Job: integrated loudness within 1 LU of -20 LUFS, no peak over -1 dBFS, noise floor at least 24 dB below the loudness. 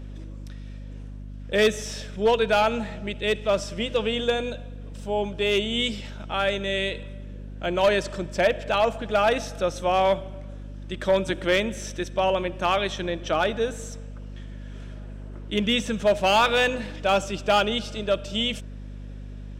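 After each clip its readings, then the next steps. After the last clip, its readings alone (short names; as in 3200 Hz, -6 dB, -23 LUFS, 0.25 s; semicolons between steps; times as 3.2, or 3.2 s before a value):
clipped 0.4%; flat tops at -13.5 dBFS; hum 50 Hz; harmonics up to 250 Hz; hum level -35 dBFS; loudness -24.5 LUFS; peak -13.5 dBFS; loudness target -20.0 LUFS
-> clip repair -13.5 dBFS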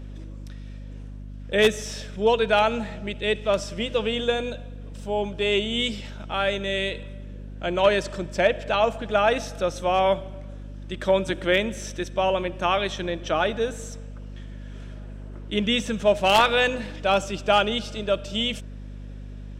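clipped 0.0%; hum 50 Hz; harmonics up to 250 Hz; hum level -35 dBFS
-> de-hum 50 Hz, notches 5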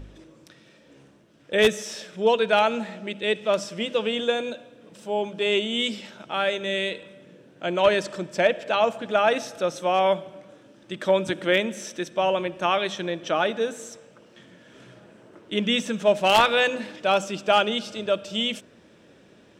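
hum none; loudness -24.0 LUFS; peak -4.0 dBFS; loudness target -20.0 LUFS
-> gain +4 dB; limiter -1 dBFS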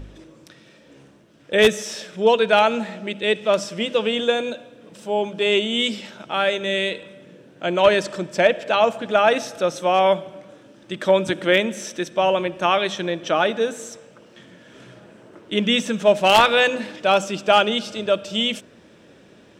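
loudness -20.0 LUFS; peak -1.0 dBFS; noise floor -51 dBFS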